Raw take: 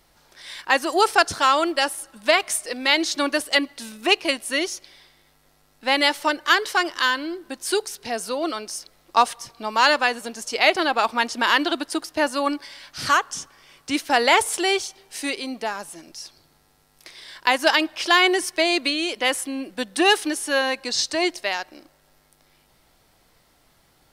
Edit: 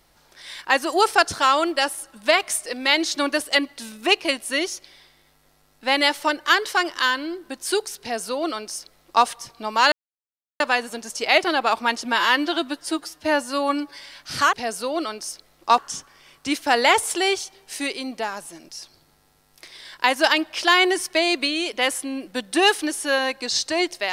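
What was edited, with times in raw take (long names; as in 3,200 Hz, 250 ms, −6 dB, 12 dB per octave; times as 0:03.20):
0:08.00–0:09.25: duplicate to 0:13.21
0:09.92: splice in silence 0.68 s
0:11.37–0:12.65: time-stretch 1.5×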